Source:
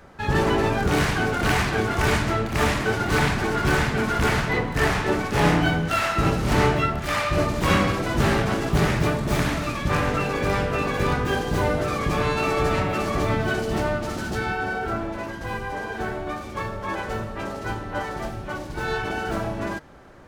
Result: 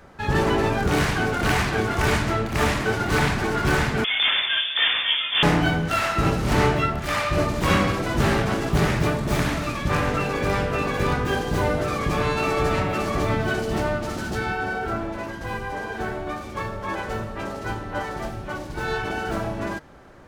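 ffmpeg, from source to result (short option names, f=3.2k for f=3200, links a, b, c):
-filter_complex "[0:a]asettb=1/sr,asplit=3[a][b][c];[a]atrim=end=4.044[d];[b]atrim=start=4.04:end=5.43,asetpts=PTS-STARTPTS,afade=t=in:d=0.004:c=qsin,afade=t=out:st=1.386:d=0.004:c=qsin,lowpass=f=3.1k:t=q:w=0.5098,lowpass=f=3.1k:t=q:w=0.6013,lowpass=f=3.1k:t=q:w=0.9,lowpass=f=3.1k:t=q:w=2.563,afreqshift=-3600[e];[c]atrim=start=5.426[f];[d][e]acrossfade=d=0.004:c1=hsin:c2=qsin[g];[g][f]acrossfade=d=0.004:c1=qsin:c2=hsin"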